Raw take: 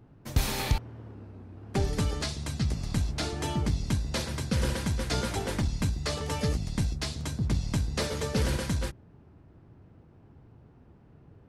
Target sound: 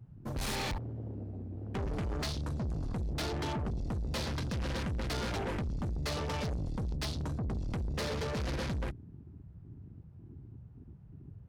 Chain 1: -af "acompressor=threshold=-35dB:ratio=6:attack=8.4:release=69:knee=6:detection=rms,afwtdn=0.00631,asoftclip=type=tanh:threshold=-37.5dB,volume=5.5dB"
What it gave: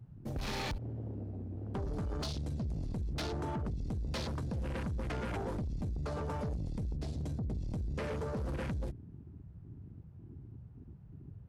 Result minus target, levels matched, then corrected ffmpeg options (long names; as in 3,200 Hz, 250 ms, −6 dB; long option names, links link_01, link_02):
downward compressor: peak gain reduction +7 dB
-af "acompressor=threshold=-26.5dB:ratio=6:attack=8.4:release=69:knee=6:detection=rms,afwtdn=0.00631,asoftclip=type=tanh:threshold=-37.5dB,volume=5.5dB"